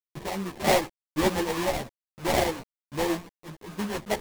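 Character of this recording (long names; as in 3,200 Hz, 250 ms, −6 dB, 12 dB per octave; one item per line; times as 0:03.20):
a quantiser's noise floor 6 bits, dither none
sample-and-hold tremolo
aliases and images of a low sample rate 1,400 Hz, jitter 20%
a shimmering, thickened sound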